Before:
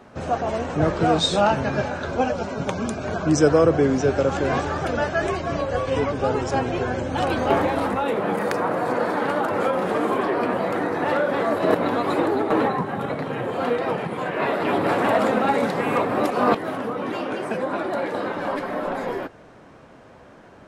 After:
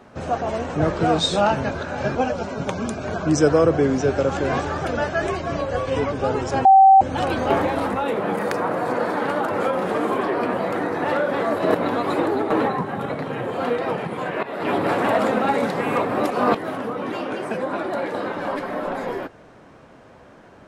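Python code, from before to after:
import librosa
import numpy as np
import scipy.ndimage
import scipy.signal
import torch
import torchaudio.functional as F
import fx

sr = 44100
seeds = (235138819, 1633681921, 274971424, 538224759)

y = fx.edit(x, sr, fx.reverse_span(start_s=1.71, length_s=0.44),
    fx.bleep(start_s=6.65, length_s=0.36, hz=773.0, db=-7.0),
    fx.fade_in_from(start_s=14.43, length_s=0.26, floor_db=-17.5), tone=tone)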